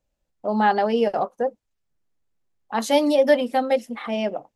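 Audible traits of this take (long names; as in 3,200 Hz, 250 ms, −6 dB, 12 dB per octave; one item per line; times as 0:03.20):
background noise floor −78 dBFS
spectral slope −3.0 dB per octave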